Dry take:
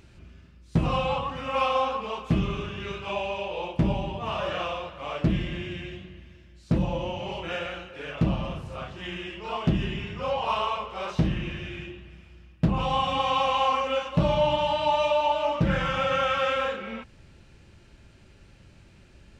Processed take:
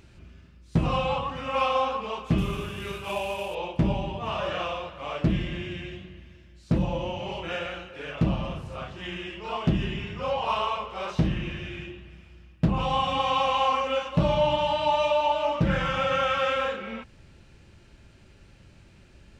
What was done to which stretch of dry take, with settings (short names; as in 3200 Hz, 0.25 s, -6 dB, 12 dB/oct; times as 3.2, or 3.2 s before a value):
2.38–3.55 CVSD 64 kbps